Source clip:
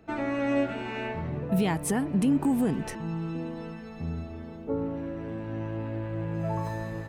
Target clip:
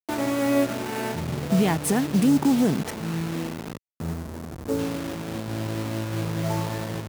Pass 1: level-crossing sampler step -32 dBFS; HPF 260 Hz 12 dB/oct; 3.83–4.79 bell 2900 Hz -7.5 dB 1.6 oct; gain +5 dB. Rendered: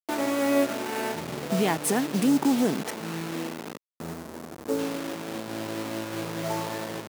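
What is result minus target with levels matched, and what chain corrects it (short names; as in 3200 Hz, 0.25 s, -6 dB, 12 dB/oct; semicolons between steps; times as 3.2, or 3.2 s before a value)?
125 Hz band -7.0 dB
level-crossing sampler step -32 dBFS; HPF 86 Hz 12 dB/oct; 3.83–4.79 bell 2900 Hz -7.5 dB 1.6 oct; gain +5 dB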